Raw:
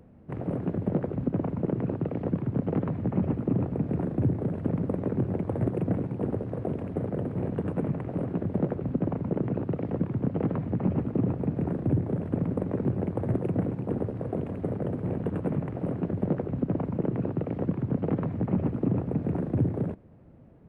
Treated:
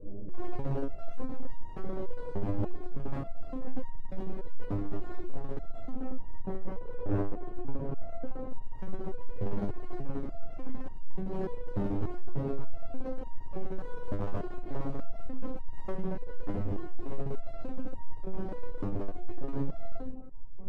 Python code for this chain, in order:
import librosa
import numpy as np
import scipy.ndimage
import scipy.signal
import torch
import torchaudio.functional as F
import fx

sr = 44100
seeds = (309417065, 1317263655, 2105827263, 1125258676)

y = fx.low_shelf(x, sr, hz=89.0, db=-11.5)
y = fx.over_compress(y, sr, threshold_db=-35.0, ratio=-1.0)
y = fx.lpc_vocoder(y, sr, seeds[0], excitation='pitch_kept', order=8)
y = fx.filter_lfo_lowpass(y, sr, shape='saw_up', hz=0.18, low_hz=460.0, high_hz=2000.0, q=1.3)
y = fx.room_shoebox(y, sr, seeds[1], volume_m3=410.0, walls='furnished', distance_m=5.3)
y = fx.filter_lfo_notch(y, sr, shape='saw_up', hz=4.4, low_hz=720.0, high_hz=2100.0, q=0.98)
y = np.clip(y, -10.0 ** (-26.0 / 20.0), 10.0 ** (-26.0 / 20.0))
y = fx.high_shelf(y, sr, hz=2200.0, db=-10.5, at=(5.89, 8.62))
y = fx.resonator_held(y, sr, hz=3.4, low_hz=100.0, high_hz=930.0)
y = F.gain(torch.from_numpy(y), 8.0).numpy()